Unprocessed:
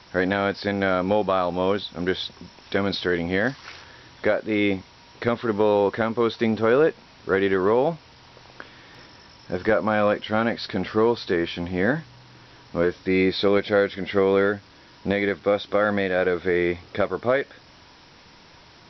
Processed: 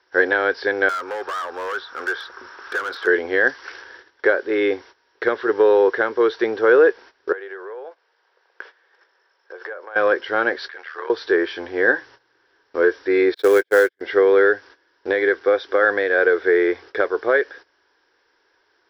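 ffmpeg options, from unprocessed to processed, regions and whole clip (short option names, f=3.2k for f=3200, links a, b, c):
-filter_complex "[0:a]asettb=1/sr,asplit=3[a][b][c];[a]atrim=end=0.894[d];[b]atrim=start=0.89:end=3.07,asetpts=PTS-STARTPTS,afade=t=in:d=0.004:c=qsin,afade=t=out:st=2.176:d=0.004:c=qsin,equalizer=f=1.3k:w=2:g=15,acrossover=split=86|500|1900|5000[e][f][g][h][i];[e]acompressor=threshold=-54dB:ratio=3[j];[f]acompressor=threshold=-37dB:ratio=3[k];[g]acompressor=threshold=-25dB:ratio=3[l];[h]acompressor=threshold=-41dB:ratio=3[m];[i]acompressor=threshold=-43dB:ratio=3[n];[j][k][l][m][n]amix=inputs=5:normalize=0,volume=27dB,asoftclip=hard,volume=-27dB[o];[c]atrim=start=3.066[p];[d][o]acrossfade=d=0.004:c1=hsin:c2=qsin[q];[q][p]acrossfade=d=0.004:c1=qsin:c2=hsin,asettb=1/sr,asplit=3[r][s][t];[r]atrim=end=7.324[u];[s]atrim=start=7.32:end=9.96,asetpts=PTS-STARTPTS,afade=t=in:d=0.004:c=qsin,afade=t=out:st=2.636:d=0.004:c=qsin,highshelf=f=4.3k:g=-6.5,acompressor=threshold=-32dB:ratio=8:attack=3.2:release=140:knee=1:detection=peak,highpass=f=440:w=0.5412,highpass=f=440:w=1.3066[v];[t]atrim=start=9.956[w];[u][v]acrossfade=d=0.004:c1=hsin:c2=qsin[x];[x][w]acrossfade=d=0.004:c1=qsin:c2=hsin,asettb=1/sr,asplit=3[y][z][aa];[y]atrim=end=10.684[ab];[z]atrim=start=10.68:end=11.1,asetpts=PTS-STARTPTS,afade=t=in:d=0.004:c=qsin,afade=t=out:st=0.416:d=0.004:c=qsin,acrossover=split=2800[ac][ad];[ad]acompressor=threshold=-49dB:ratio=4:attack=1:release=60[ae];[ac][ae]amix=inputs=2:normalize=0,highpass=1.2k,tremolo=f=79:d=0.824[af];[aa]atrim=start=11.096[ag];[ab][af]acrossfade=d=0.004:c1=hsin:c2=qsin[ah];[ah][ag]acrossfade=d=0.004:c1=qsin:c2=hsin,asettb=1/sr,asplit=3[ai][aj][ak];[ai]atrim=end=13.344[al];[aj]atrim=start=13.34:end=14.01,asetpts=PTS-STARTPTS,afade=t=in:d=0.004:c=qsin,afade=t=out:st=0.666:d=0.004:c=qsin,agate=range=-45dB:threshold=-26dB:ratio=16:release=100:detection=peak,acrusher=bits=4:mode=log:mix=0:aa=0.000001[am];[ak]atrim=start=14.006[an];[al][am]acrossfade=d=0.004:c1=hsin:c2=qsin[ao];[ao][an]acrossfade=d=0.004:c1=qsin:c2=hsin,equalizer=f=160:t=o:w=0.33:g=-10,equalizer=f=630:t=o:w=0.33:g=-5,equalizer=f=1.6k:t=o:w=0.33:g=12,equalizer=f=2.5k:t=o:w=0.33:g=-4,equalizer=f=4k:t=o:w=0.33:g=-3,agate=range=-16dB:threshold=-42dB:ratio=16:detection=peak,lowshelf=f=270:t=q:w=3:g=-13"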